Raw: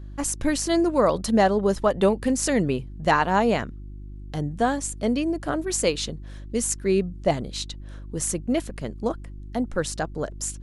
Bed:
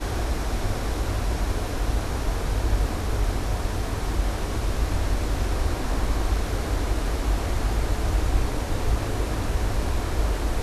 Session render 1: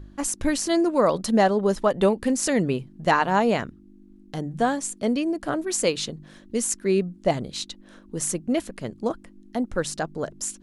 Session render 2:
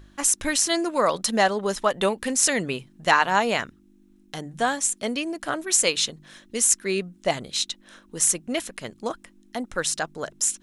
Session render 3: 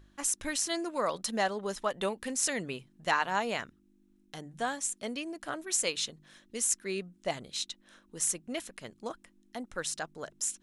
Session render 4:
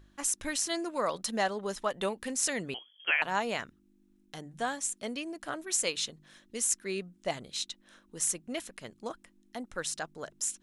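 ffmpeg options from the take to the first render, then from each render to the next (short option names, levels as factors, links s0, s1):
-af "bandreject=f=50:t=h:w=4,bandreject=f=100:t=h:w=4,bandreject=f=150:t=h:w=4"
-af "tiltshelf=f=820:g=-7.5,bandreject=f=4600:w=14"
-af "volume=0.335"
-filter_complex "[0:a]asettb=1/sr,asplit=3[s0][s1][s2];[s0]atrim=end=2.744[s3];[s1]atrim=start=2.74:end=3.22,asetpts=PTS-STARTPTS,afade=t=in:d=0.004:c=qsin,afade=t=out:st=0.476:d=0.004:c=qsin,lowpass=f=2900:t=q:w=0.5098,lowpass=f=2900:t=q:w=0.6013,lowpass=f=2900:t=q:w=0.9,lowpass=f=2900:t=q:w=2.563,afreqshift=-3400[s4];[s2]atrim=start=3.216[s5];[s3][s4]acrossfade=d=0.004:c1=hsin:c2=qsin[s6];[s6][s5]acrossfade=d=0.004:c1=qsin:c2=hsin"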